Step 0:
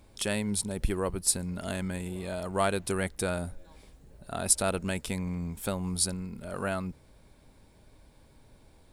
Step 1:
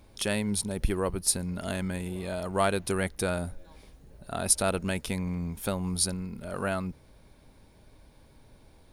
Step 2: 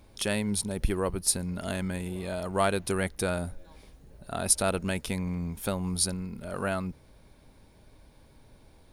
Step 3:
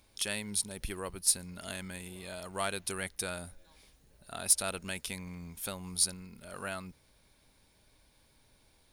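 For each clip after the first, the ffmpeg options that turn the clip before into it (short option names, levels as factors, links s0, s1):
-af "bandreject=f=7700:w=5.6,volume=1.19"
-af anull
-af "tiltshelf=f=1400:g=-6.5,asoftclip=type=tanh:threshold=0.398,volume=0.501"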